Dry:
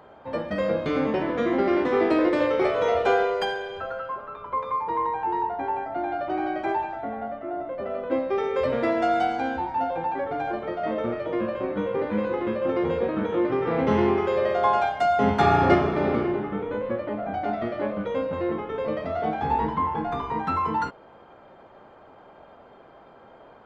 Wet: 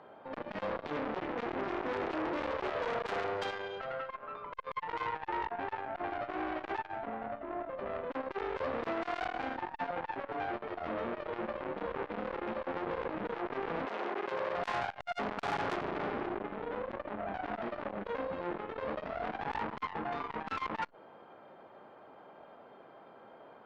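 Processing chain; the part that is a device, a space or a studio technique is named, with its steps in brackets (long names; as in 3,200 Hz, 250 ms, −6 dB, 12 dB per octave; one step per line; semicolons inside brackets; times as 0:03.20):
valve radio (band-pass filter 150–4,700 Hz; tube saturation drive 25 dB, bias 0.6; saturating transformer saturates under 950 Hz)
0:13.85–0:14.55: high-pass filter 470 Hz → 140 Hz 12 dB per octave
level −1.5 dB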